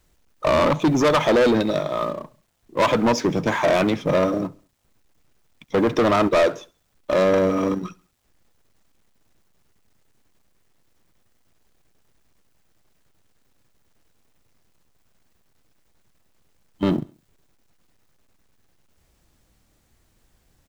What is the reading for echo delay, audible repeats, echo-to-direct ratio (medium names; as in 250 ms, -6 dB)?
68 ms, 2, -22.5 dB